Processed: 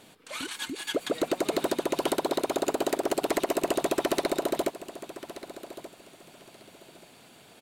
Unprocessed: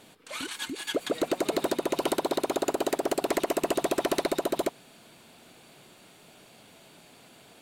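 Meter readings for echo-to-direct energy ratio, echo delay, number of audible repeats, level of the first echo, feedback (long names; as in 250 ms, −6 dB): −14.5 dB, 1,180 ms, 2, −14.5 dB, 23%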